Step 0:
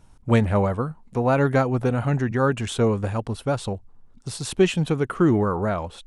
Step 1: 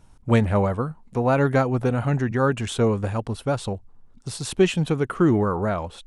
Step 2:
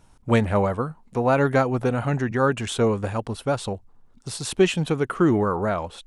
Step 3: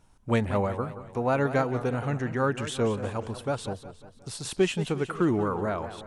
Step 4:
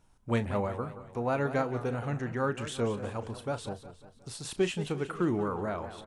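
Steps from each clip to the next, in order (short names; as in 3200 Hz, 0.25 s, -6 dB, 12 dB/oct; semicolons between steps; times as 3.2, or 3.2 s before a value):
nothing audible
low shelf 210 Hz -5.5 dB; gain +1.5 dB
warbling echo 0.18 s, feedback 50%, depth 161 cents, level -12.5 dB; gain -5.5 dB
doubler 34 ms -13 dB; gain -4.5 dB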